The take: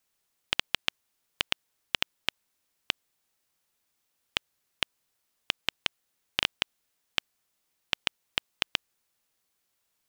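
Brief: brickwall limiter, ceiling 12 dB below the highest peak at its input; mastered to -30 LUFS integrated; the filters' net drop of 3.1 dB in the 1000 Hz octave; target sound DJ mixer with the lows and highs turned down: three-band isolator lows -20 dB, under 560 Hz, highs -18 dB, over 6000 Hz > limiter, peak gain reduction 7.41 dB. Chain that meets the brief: bell 1000 Hz -3 dB; limiter -16 dBFS; three-band isolator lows -20 dB, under 560 Hz, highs -18 dB, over 6000 Hz; gain +22.5 dB; limiter -2 dBFS

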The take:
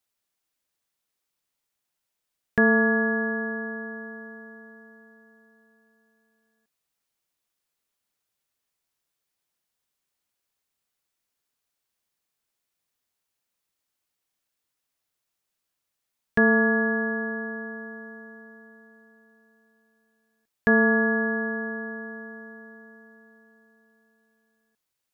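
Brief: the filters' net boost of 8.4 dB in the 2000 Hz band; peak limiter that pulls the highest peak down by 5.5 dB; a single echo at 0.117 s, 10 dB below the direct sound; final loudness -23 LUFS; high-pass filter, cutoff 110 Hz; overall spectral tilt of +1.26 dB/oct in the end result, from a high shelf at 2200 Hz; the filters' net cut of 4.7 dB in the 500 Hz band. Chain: HPF 110 Hz; bell 500 Hz -6.5 dB; bell 2000 Hz +9 dB; high shelf 2200 Hz +4.5 dB; limiter -11.5 dBFS; echo 0.117 s -10 dB; gain -2.5 dB

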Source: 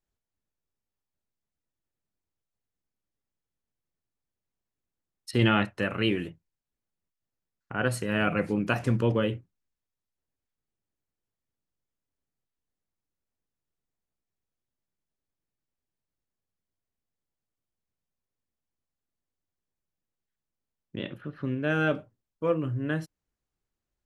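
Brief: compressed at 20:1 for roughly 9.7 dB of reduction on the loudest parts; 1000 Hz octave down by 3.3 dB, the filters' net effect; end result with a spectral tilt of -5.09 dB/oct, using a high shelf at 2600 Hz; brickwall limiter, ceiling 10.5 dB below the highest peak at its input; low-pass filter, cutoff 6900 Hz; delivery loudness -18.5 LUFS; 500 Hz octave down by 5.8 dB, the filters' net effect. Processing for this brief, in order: LPF 6900 Hz; bell 500 Hz -6 dB; bell 1000 Hz -5.5 dB; high shelf 2600 Hz +7 dB; compressor 20:1, threshold -27 dBFS; gain +20 dB; limiter -6.5 dBFS

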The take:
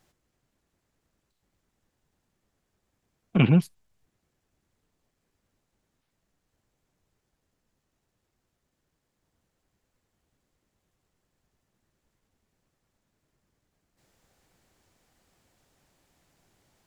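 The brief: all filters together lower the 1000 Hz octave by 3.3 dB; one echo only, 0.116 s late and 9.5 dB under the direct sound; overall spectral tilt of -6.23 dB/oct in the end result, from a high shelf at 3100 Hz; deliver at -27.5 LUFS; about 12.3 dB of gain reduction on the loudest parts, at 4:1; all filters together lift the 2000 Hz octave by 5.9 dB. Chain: bell 1000 Hz -7.5 dB; bell 2000 Hz +5 dB; high shelf 3100 Hz +8.5 dB; compressor 4:1, threshold -29 dBFS; echo 0.116 s -9.5 dB; gain +6.5 dB

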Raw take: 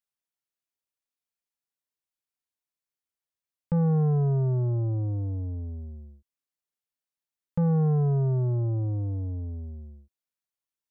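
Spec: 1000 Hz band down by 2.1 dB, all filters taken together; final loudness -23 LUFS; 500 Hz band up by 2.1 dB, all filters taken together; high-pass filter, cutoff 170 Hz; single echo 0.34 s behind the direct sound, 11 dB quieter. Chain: HPF 170 Hz; bell 500 Hz +3.5 dB; bell 1000 Hz -5 dB; echo 0.34 s -11 dB; gain +7 dB

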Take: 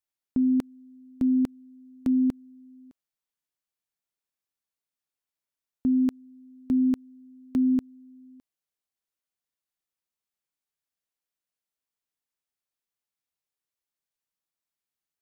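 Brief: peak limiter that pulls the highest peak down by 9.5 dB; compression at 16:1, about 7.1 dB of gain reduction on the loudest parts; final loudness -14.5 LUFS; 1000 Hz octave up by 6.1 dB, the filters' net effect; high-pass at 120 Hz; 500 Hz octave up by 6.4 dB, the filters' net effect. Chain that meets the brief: HPF 120 Hz; bell 500 Hz +8 dB; bell 1000 Hz +5 dB; compressor 16:1, threshold -25 dBFS; gain +21.5 dB; limiter -5 dBFS

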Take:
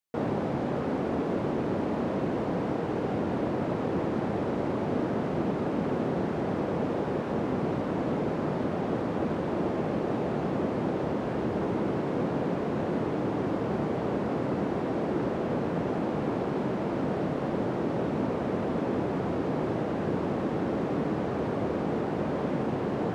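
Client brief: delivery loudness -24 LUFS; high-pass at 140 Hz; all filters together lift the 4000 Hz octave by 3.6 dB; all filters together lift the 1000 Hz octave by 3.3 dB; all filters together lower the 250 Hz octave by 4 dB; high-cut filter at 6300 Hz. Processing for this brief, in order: HPF 140 Hz; LPF 6300 Hz; bell 250 Hz -5 dB; bell 1000 Hz +4.5 dB; bell 4000 Hz +5 dB; gain +7 dB

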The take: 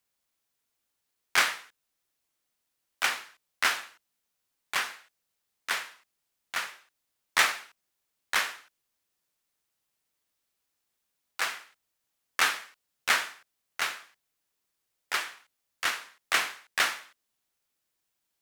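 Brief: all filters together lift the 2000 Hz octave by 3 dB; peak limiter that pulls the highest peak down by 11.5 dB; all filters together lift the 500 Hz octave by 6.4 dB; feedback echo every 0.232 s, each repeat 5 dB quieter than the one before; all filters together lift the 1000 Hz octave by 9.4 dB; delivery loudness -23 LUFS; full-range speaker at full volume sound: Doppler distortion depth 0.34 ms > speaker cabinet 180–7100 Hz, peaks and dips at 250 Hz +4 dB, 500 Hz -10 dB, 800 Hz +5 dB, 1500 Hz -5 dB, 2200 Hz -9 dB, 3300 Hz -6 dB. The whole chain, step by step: bell 500 Hz +7.5 dB; bell 1000 Hz +8.5 dB; bell 2000 Hz +7.5 dB; limiter -11.5 dBFS; feedback echo 0.232 s, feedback 56%, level -5 dB; Doppler distortion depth 0.34 ms; speaker cabinet 180–7100 Hz, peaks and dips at 250 Hz +4 dB, 500 Hz -10 dB, 800 Hz +5 dB, 1500 Hz -5 dB, 2200 Hz -9 dB, 3300 Hz -6 dB; gain +7.5 dB

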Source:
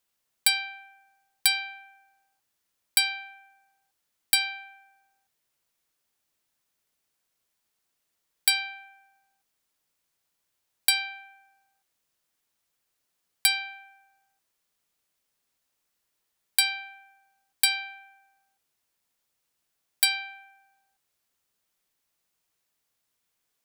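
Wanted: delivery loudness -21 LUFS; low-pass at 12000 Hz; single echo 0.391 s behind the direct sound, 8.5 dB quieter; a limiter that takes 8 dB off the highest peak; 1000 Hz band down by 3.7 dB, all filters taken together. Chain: LPF 12000 Hz; bell 1000 Hz -5.5 dB; limiter -15.5 dBFS; echo 0.391 s -8.5 dB; gain +11 dB

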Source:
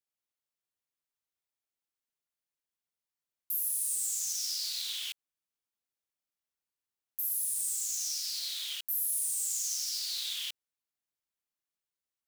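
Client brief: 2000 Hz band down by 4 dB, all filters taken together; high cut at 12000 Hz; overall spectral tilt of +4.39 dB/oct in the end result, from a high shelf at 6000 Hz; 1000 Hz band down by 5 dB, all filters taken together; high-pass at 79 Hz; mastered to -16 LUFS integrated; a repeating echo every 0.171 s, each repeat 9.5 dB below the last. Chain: HPF 79 Hz; LPF 12000 Hz; bell 1000 Hz -4.5 dB; bell 2000 Hz -6 dB; high shelf 6000 Hz +5.5 dB; feedback echo 0.171 s, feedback 33%, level -9.5 dB; gain +13 dB

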